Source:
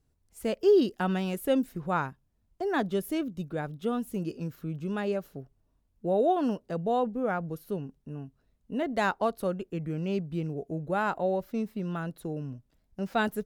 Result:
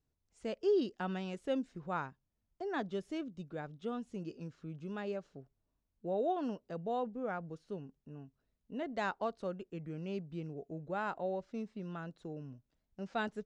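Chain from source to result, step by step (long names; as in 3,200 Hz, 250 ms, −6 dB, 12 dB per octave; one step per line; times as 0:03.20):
inverse Chebyshev low-pass filter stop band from 12,000 Hz, stop band 40 dB
low-shelf EQ 140 Hz −4.5 dB
level −8.5 dB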